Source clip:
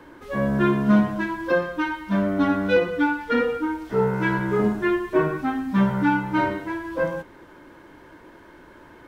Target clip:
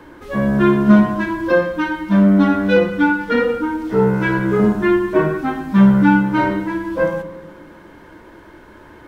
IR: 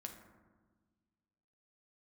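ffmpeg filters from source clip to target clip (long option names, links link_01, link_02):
-filter_complex "[0:a]asplit=2[link_01][link_02];[1:a]atrim=start_sample=2205,lowshelf=frequency=190:gain=5.5[link_03];[link_02][link_03]afir=irnorm=-1:irlink=0,volume=2dB[link_04];[link_01][link_04]amix=inputs=2:normalize=0"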